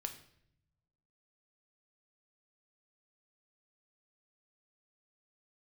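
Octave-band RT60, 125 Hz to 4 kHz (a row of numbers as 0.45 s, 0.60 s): 1.6 s, 1.2 s, 0.80 s, 0.60 s, 0.65 s, 0.60 s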